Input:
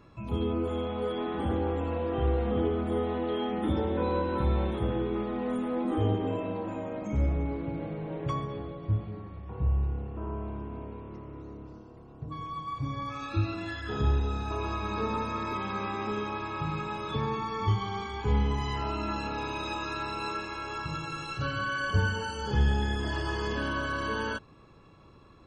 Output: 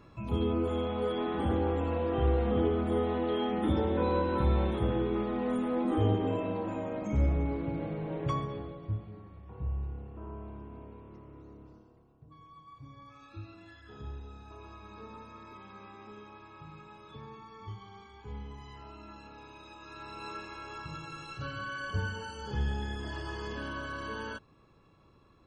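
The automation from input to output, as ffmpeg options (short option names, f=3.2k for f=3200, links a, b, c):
-af "volume=9.5dB,afade=t=out:st=8.33:d=0.68:silence=0.421697,afade=t=out:st=11.69:d=0.5:silence=0.354813,afade=t=in:st=19.78:d=0.58:silence=0.334965"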